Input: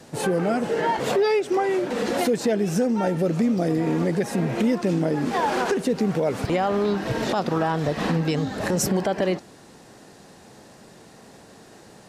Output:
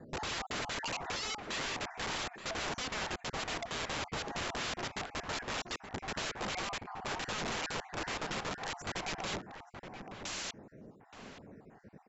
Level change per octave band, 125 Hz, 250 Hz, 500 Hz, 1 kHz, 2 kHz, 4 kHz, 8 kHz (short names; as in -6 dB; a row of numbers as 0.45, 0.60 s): -19.5, -22.5, -20.5, -12.5, -6.0, -2.0, -7.0 dB